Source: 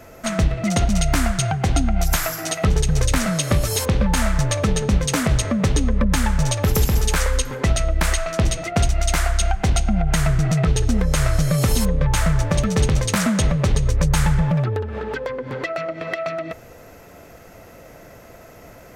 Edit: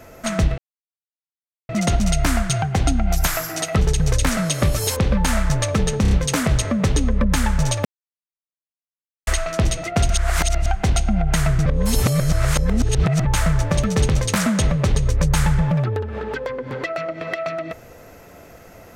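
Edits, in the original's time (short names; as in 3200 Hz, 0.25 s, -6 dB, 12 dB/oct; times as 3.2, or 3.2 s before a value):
0.58 insert silence 1.11 s
4.91 stutter 0.03 s, 4 plays
6.65–8.07 mute
8.9–9.46 reverse
10.46–12.05 reverse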